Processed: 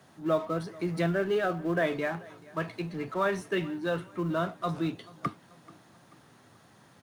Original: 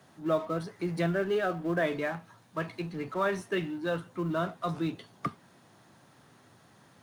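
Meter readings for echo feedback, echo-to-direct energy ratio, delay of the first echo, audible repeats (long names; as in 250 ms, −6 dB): 47%, −21.0 dB, 435 ms, 2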